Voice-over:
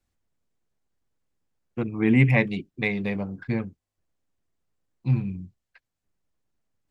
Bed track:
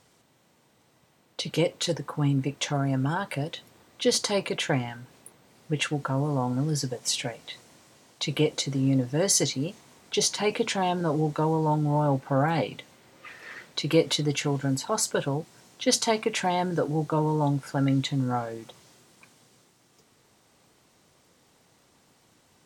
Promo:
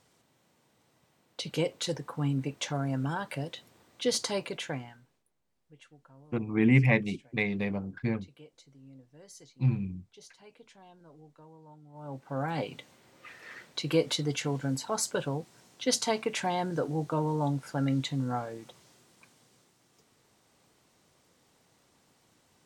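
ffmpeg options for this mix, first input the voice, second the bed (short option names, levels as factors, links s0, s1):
-filter_complex "[0:a]adelay=4550,volume=0.668[s0];[1:a]volume=9.44,afade=t=out:st=4.26:d=0.98:silence=0.0630957,afade=t=in:st=11.93:d=0.84:silence=0.0595662[s1];[s0][s1]amix=inputs=2:normalize=0"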